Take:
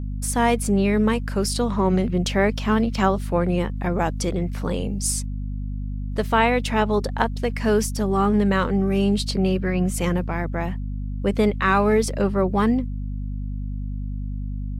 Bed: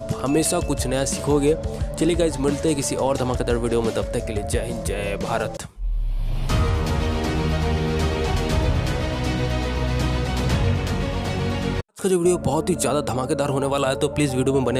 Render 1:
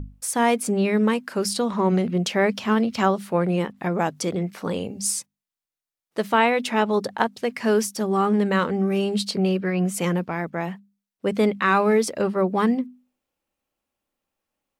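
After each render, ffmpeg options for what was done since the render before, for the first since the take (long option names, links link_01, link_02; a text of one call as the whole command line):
ffmpeg -i in.wav -af "bandreject=frequency=50:width_type=h:width=6,bandreject=frequency=100:width_type=h:width=6,bandreject=frequency=150:width_type=h:width=6,bandreject=frequency=200:width_type=h:width=6,bandreject=frequency=250:width_type=h:width=6" out.wav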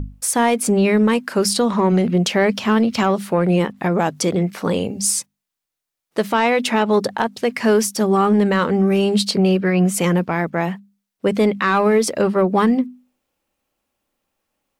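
ffmpeg -i in.wav -af "acontrast=85,alimiter=limit=-8.5dB:level=0:latency=1:release=99" out.wav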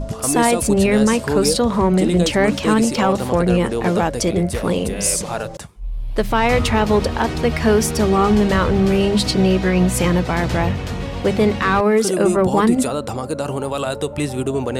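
ffmpeg -i in.wav -i bed.wav -filter_complex "[1:a]volume=-1.5dB[link_01];[0:a][link_01]amix=inputs=2:normalize=0" out.wav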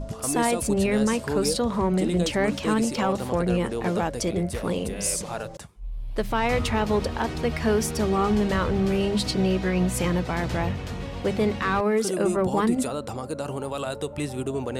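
ffmpeg -i in.wav -af "volume=-7.5dB" out.wav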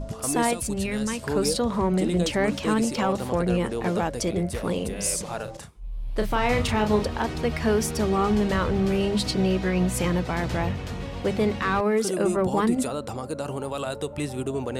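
ffmpeg -i in.wav -filter_complex "[0:a]asettb=1/sr,asplit=3[link_01][link_02][link_03];[link_01]atrim=end=0.534[link_04];[link_02]atrim=start=0.53:end=1.23,asetpts=PTS-STARTPTS,afade=type=in:duration=0.004:curve=qsin,afade=type=out:start_time=0.696:duration=0.004:curve=qsin,equalizer=frequency=520:width=0.42:gain=-8.5[link_05];[link_03]atrim=start=1.226[link_06];[link_04][link_05]acrossfade=duration=0.004:curve1=hsin:curve2=qsin[link_07];[link_07][link_06]acrossfade=duration=0.004:curve1=qsin:curve2=hsin,asettb=1/sr,asplit=3[link_08][link_09][link_10];[link_08]atrim=end=5.444[link_11];[link_09]atrim=start=5.44:end=7.05,asetpts=PTS-STARTPTS,afade=type=in:duration=0.004:curve=qsin,afade=type=out:start_time=1.606:duration=0.004:curve=qsin,asplit=2[link_12][link_13];[link_13]adelay=33,volume=-6.5dB[link_14];[link_12][link_14]amix=inputs=2:normalize=0,atrim=end_sample=71001[link_15];[link_10]atrim=start=7.046[link_16];[link_11][link_15]acrossfade=duration=0.004:curve1=hsin:curve2=qsin[link_17];[link_17][link_16]acrossfade=duration=0.004:curve1=qsin:curve2=hsin" out.wav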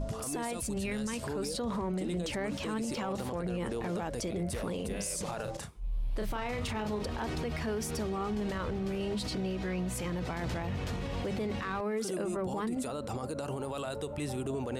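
ffmpeg -i in.wav -af "acompressor=threshold=-24dB:ratio=6,alimiter=level_in=3dB:limit=-24dB:level=0:latency=1:release=40,volume=-3dB" out.wav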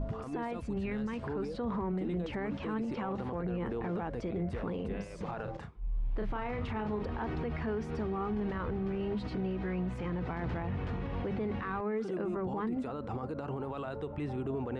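ffmpeg -i in.wav -af "lowpass=1900,equalizer=frequency=590:width=6.4:gain=-7" out.wav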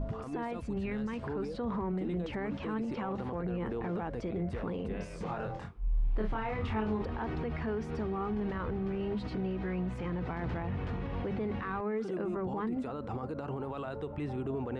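ffmpeg -i in.wav -filter_complex "[0:a]asettb=1/sr,asplit=3[link_01][link_02][link_03];[link_01]atrim=end=4.984[link_04];[link_02]atrim=start=4.98:end=7.05,asetpts=PTS-STARTPTS,afade=type=in:duration=0.004:curve=qsin,afade=type=out:start_time=2.066:duration=0.004:curve=qsin,asplit=2[link_05][link_06];[link_06]adelay=23,volume=-3dB[link_07];[link_05][link_07]amix=inputs=2:normalize=0,atrim=end_sample=91287[link_08];[link_03]atrim=start=7.046[link_09];[link_04][link_08]acrossfade=duration=0.004:curve1=hsin:curve2=qsin[link_10];[link_10][link_09]acrossfade=duration=0.004:curve1=qsin:curve2=hsin" out.wav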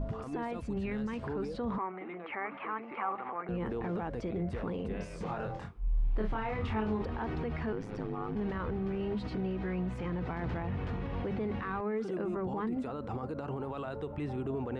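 ffmpeg -i in.wav -filter_complex "[0:a]asettb=1/sr,asplit=3[link_01][link_02][link_03];[link_01]atrim=end=1.784[link_04];[link_02]atrim=start=1.78:end=3.49,asetpts=PTS-STARTPTS,afade=type=in:duration=0.004:curve=qsin,afade=type=out:start_time=1.706:duration=0.004:curve=qsin,highpass=470,equalizer=frequency=510:width_type=q:width=4:gain=-6,equalizer=frequency=790:width_type=q:width=4:gain=5,equalizer=frequency=1200:width_type=q:width=4:gain=10,equalizer=frequency=2200:width_type=q:width=4:gain=9,lowpass=frequency=2600:width=0.5412,lowpass=frequency=2600:width=1.3066[link_05];[link_03]atrim=start=3.486[link_06];[link_04][link_05]acrossfade=duration=0.004:curve1=hsin:curve2=qsin[link_07];[link_07][link_06]acrossfade=duration=0.004:curve1=qsin:curve2=hsin,asettb=1/sr,asplit=3[link_08][link_09][link_10];[link_08]atrim=end=7.724[link_11];[link_09]atrim=start=7.72:end=8.36,asetpts=PTS-STARTPTS,afade=type=in:duration=0.004:curve=qsin,afade=type=out:start_time=0.636:duration=0.004:curve=qsin,aeval=exprs='val(0)*sin(2*PI*51*n/s)':channel_layout=same[link_12];[link_10]atrim=start=8.356[link_13];[link_11][link_12]acrossfade=duration=0.004:curve1=hsin:curve2=qsin[link_14];[link_14][link_13]acrossfade=duration=0.004:curve1=qsin:curve2=hsin" out.wav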